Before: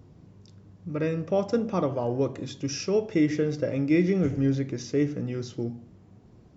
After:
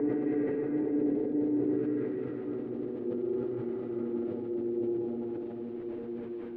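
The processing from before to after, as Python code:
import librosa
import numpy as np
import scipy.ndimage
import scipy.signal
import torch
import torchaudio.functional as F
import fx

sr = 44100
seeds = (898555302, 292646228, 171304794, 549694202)

y = fx.tracing_dist(x, sr, depth_ms=0.31)
y = fx.highpass(y, sr, hz=62.0, slope=6)
y = fx.low_shelf_res(y, sr, hz=210.0, db=-10.0, q=1.5)
y = fx.level_steps(y, sr, step_db=10)
y = fx.paulstretch(y, sr, seeds[0], factor=6.9, window_s=1.0, from_s=4.98)
y = fx.filter_lfo_lowpass(y, sr, shape='sine', hz=0.59, low_hz=670.0, high_hz=1700.0, q=0.99)
y = np.where(np.abs(y) >= 10.0 ** (-50.5 / 20.0), y, 0.0)
y = fx.air_absorb(y, sr, metres=480.0)
y = y + 10.0 ** (-12.0 / 20.0) * np.pad(y, (int(225 * sr / 1000.0), 0))[:len(y)]
y = fx.rev_spring(y, sr, rt60_s=3.8, pass_ms=(37, 57), chirp_ms=35, drr_db=5.5)
y = fx.sustainer(y, sr, db_per_s=21.0)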